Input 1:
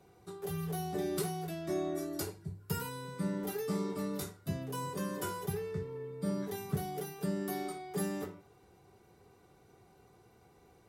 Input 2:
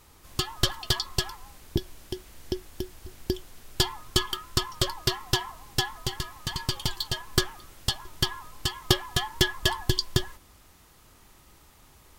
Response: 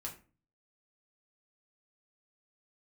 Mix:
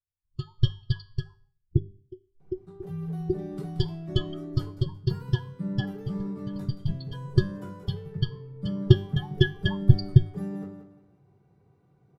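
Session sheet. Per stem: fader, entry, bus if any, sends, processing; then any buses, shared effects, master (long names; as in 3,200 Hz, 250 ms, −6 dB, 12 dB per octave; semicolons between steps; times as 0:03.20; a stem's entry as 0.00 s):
−2.0 dB, 2.40 s, no send, echo send −10 dB, low-pass filter 1,500 Hz 6 dB per octave
0.0 dB, 0.00 s, send −17 dB, no echo send, every bin expanded away from the loudest bin 2.5 to 1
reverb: on, RT60 0.35 s, pre-delay 5 ms
echo: repeating echo 177 ms, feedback 27%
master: parametric band 140 Hz +14 dB 1.1 octaves; tuned comb filter 98 Hz, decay 0.49 s, harmonics all, mix 50%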